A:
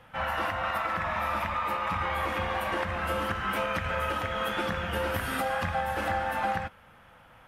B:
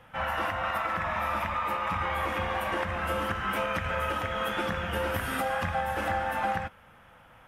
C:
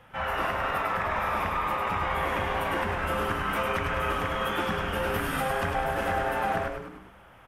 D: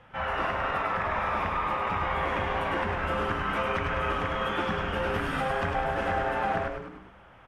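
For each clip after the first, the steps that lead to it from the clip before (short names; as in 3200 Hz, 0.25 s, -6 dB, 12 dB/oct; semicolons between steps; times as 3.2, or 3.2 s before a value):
bell 4300 Hz -4.5 dB 0.33 oct
frequency-shifting echo 0.102 s, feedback 55%, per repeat -120 Hz, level -4.5 dB
air absorption 81 m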